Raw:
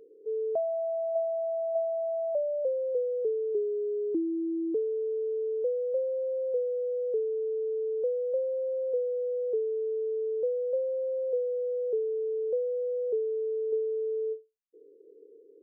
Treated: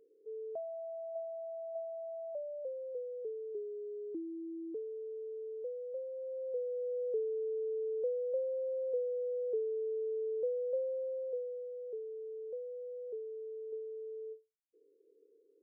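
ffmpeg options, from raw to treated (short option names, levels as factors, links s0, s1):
-af "volume=0.531,afade=t=in:st=6.12:d=0.89:silence=0.473151,afade=t=out:st=10.82:d=0.89:silence=0.421697"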